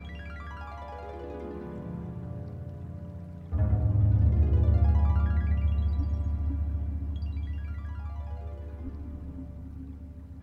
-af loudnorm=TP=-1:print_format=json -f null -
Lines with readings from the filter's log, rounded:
"input_i" : "-31.2",
"input_tp" : "-13.5",
"input_lra" : "13.5",
"input_thresh" : "-41.8",